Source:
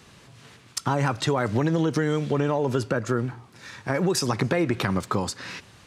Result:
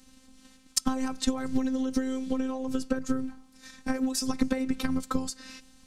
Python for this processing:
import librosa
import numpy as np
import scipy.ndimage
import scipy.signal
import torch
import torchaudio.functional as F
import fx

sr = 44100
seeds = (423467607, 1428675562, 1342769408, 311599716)

y = fx.transient(x, sr, attack_db=8, sustain_db=1)
y = fx.bass_treble(y, sr, bass_db=15, treble_db=11)
y = fx.robotise(y, sr, hz=261.0)
y = y * librosa.db_to_amplitude(-11.0)